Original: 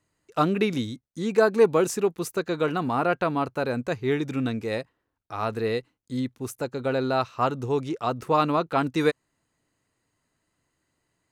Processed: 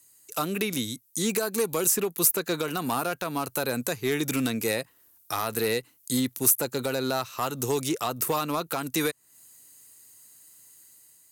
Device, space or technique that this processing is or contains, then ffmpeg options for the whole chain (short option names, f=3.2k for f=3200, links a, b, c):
FM broadcast chain: -filter_complex "[0:a]highpass=f=73:p=1,dynaudnorm=f=900:g=3:m=6dB,acrossover=split=140|2900[a][b][c];[a]acompressor=threshold=-39dB:ratio=4[d];[b]acompressor=threshold=-20dB:ratio=4[e];[c]acompressor=threshold=-48dB:ratio=4[f];[d][e][f]amix=inputs=3:normalize=0,aemphasis=mode=production:type=75fm,alimiter=limit=-16dB:level=0:latency=1:release=322,asoftclip=type=hard:threshold=-19dB,lowpass=f=15k:w=0.5412,lowpass=f=15k:w=1.3066,aemphasis=mode=production:type=75fm"